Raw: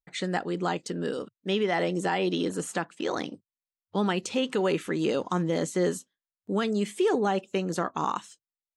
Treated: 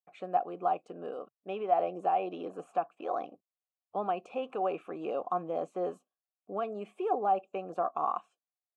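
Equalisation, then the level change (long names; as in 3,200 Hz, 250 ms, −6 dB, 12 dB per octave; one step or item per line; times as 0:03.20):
formant filter a
parametric band 4,500 Hz −15 dB 2.1 octaves
+8.5 dB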